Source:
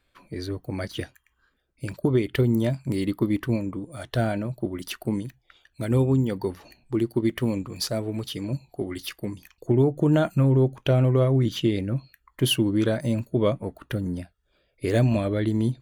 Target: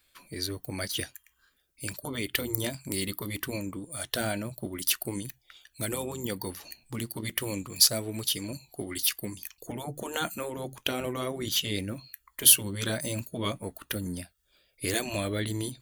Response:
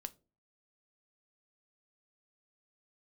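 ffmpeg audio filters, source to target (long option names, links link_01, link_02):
-af "afftfilt=real='re*lt(hypot(re,im),0.501)':imag='im*lt(hypot(re,im),0.501)':win_size=1024:overlap=0.75,crystalizer=i=7:c=0,volume=-6dB"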